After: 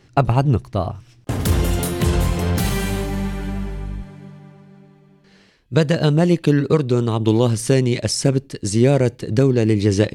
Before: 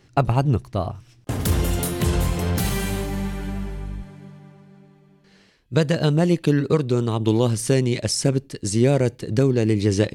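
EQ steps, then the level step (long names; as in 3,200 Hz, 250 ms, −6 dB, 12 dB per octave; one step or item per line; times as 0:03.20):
high-shelf EQ 7,700 Hz −4 dB
+3.0 dB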